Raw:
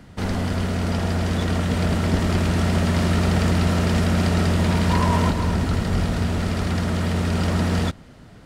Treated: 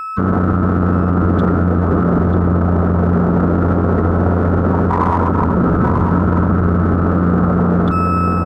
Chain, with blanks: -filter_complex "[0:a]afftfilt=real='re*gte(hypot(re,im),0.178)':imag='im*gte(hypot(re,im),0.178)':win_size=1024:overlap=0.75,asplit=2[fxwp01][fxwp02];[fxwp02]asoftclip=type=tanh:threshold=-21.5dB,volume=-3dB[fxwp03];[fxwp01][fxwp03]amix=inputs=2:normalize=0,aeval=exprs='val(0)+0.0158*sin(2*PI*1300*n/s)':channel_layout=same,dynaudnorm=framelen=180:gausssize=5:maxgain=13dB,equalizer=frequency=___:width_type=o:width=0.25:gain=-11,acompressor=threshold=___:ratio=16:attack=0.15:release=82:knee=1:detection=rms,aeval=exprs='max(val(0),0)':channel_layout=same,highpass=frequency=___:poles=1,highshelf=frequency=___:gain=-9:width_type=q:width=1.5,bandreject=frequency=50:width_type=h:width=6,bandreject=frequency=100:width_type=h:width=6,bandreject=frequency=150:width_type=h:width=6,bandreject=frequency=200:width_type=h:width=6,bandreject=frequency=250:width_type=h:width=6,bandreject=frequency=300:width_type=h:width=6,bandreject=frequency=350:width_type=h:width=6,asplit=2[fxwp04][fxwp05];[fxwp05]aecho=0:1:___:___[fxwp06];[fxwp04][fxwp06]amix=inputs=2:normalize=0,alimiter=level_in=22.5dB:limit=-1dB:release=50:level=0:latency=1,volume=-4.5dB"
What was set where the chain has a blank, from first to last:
650, -12dB, 170, 1800, 939, 0.422